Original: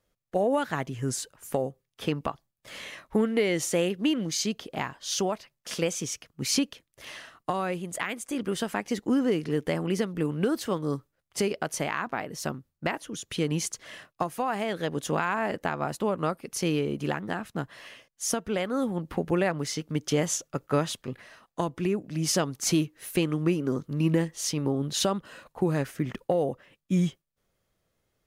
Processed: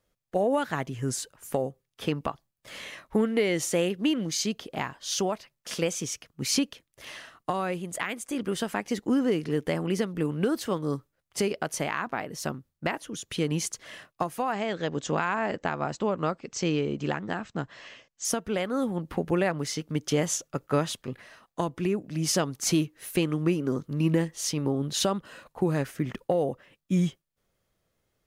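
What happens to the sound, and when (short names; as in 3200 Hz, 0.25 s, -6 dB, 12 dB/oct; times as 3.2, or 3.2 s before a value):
14.52–18.25 brick-wall FIR low-pass 8200 Hz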